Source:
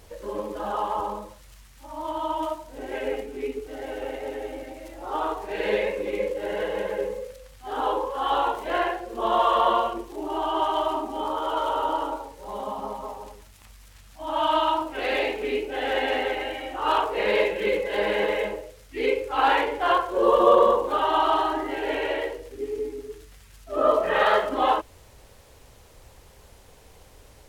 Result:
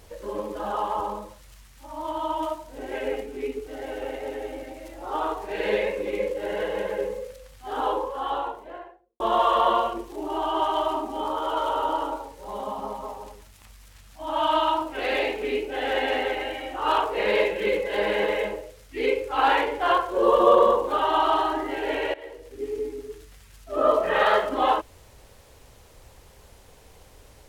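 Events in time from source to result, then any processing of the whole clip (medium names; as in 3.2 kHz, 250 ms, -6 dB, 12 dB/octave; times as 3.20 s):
7.77–9.20 s: studio fade out
22.14–22.66 s: fade in, from -19.5 dB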